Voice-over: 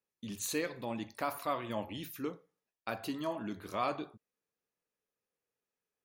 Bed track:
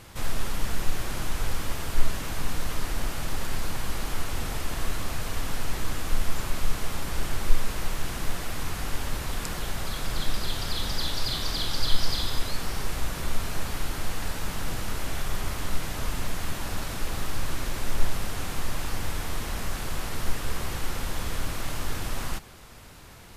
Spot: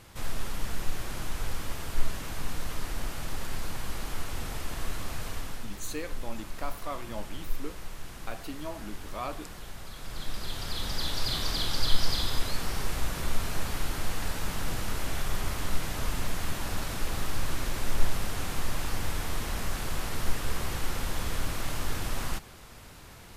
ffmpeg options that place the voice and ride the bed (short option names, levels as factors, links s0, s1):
-filter_complex "[0:a]adelay=5400,volume=0.75[s0];[1:a]volume=2,afade=t=out:st=5.27:d=0.43:silence=0.446684,afade=t=in:st=9.95:d=1.41:silence=0.298538[s1];[s0][s1]amix=inputs=2:normalize=0"